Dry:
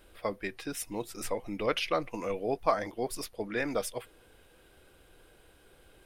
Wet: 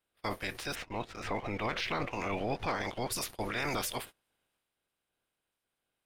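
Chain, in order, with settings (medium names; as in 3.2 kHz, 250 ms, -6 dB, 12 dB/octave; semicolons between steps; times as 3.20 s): spectral peaks clipped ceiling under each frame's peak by 20 dB; 0.74–3.11 s: low-pass 2.3 kHz -> 5.2 kHz 12 dB/octave; gate -47 dBFS, range -25 dB; waveshaping leveller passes 1; transient shaper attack -4 dB, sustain +5 dB; peak limiter -23 dBFS, peak gain reduction 9 dB; trim -1 dB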